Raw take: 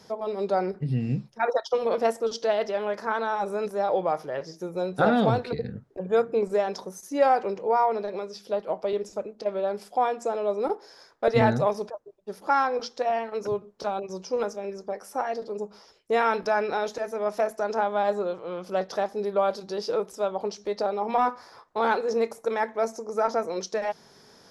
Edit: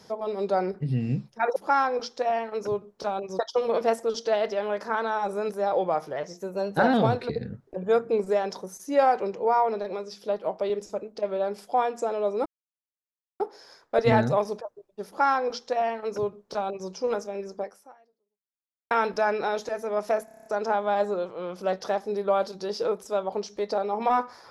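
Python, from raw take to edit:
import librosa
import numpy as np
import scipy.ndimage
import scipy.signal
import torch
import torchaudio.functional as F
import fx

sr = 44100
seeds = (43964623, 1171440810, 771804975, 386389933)

y = fx.edit(x, sr, fx.speed_span(start_s=4.33, length_s=0.84, speed=1.08),
    fx.insert_silence(at_s=10.69, length_s=0.94),
    fx.duplicate(start_s=12.36, length_s=1.83, to_s=1.56),
    fx.fade_out_span(start_s=14.92, length_s=1.28, curve='exp'),
    fx.stutter(start_s=17.54, slice_s=0.03, count=8), tone=tone)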